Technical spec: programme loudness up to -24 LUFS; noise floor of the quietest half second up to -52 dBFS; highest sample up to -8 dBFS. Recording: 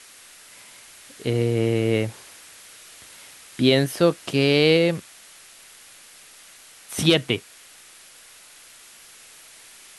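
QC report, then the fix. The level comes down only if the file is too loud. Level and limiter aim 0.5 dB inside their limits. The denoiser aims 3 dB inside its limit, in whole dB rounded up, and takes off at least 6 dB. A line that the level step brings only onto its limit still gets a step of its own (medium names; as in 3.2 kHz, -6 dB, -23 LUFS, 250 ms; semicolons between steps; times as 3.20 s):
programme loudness -21.5 LUFS: fail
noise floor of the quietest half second -48 dBFS: fail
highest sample -5.5 dBFS: fail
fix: noise reduction 6 dB, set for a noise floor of -48 dBFS; trim -3 dB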